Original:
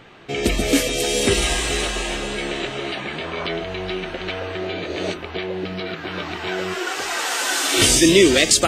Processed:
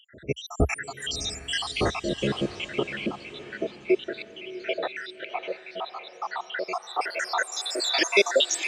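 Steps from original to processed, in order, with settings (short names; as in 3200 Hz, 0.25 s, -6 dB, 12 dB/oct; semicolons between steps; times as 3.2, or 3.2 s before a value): random spectral dropouts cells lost 84%; high shelf 3600 Hz +12 dB; high-pass sweep 65 Hz -> 750 Hz, 1.29–4.92; tape spacing loss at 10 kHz 26 dB; on a send: diffused feedback echo 0.63 s, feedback 41%, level -13.5 dB; on the sum: gain +4 dB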